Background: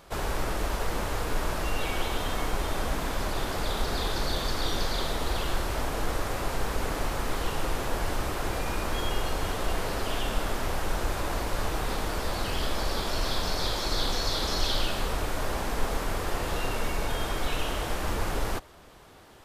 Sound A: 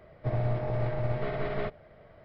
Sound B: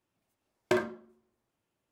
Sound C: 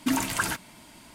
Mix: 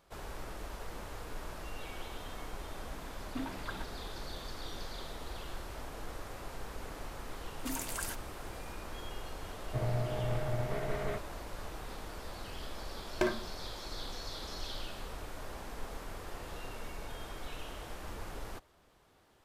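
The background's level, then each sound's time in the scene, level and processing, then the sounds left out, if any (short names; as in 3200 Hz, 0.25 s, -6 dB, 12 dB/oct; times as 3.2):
background -14 dB
3.29 add C -13 dB + air absorption 430 m
7.59 add C -15.5 dB + high shelf 5100 Hz +11 dB
9.49 add A -4.5 dB
12.5 add B -3.5 dB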